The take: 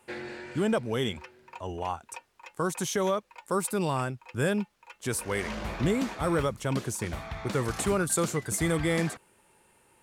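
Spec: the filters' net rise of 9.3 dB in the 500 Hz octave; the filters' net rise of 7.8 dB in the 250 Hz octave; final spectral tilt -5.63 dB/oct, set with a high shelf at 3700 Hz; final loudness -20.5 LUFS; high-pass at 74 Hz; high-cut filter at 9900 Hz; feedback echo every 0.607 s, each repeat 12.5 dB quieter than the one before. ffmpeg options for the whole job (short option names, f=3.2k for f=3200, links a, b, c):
-af "highpass=74,lowpass=9.9k,equalizer=f=250:t=o:g=8,equalizer=f=500:t=o:g=9,highshelf=f=3.7k:g=-6,aecho=1:1:607|1214|1821:0.237|0.0569|0.0137,volume=3dB"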